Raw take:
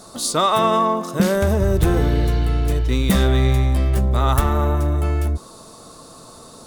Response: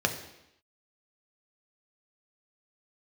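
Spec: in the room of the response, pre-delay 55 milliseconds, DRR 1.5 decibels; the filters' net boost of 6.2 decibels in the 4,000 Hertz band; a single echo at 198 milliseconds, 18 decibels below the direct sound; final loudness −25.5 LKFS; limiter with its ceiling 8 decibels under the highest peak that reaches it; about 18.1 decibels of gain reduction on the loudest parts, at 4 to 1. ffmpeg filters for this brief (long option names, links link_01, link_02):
-filter_complex "[0:a]equalizer=frequency=4000:width_type=o:gain=7,acompressor=threshold=-34dB:ratio=4,alimiter=level_in=4.5dB:limit=-24dB:level=0:latency=1,volume=-4.5dB,aecho=1:1:198:0.126,asplit=2[link_01][link_02];[1:a]atrim=start_sample=2205,adelay=55[link_03];[link_02][link_03]afir=irnorm=-1:irlink=0,volume=-12dB[link_04];[link_01][link_04]amix=inputs=2:normalize=0,volume=10dB"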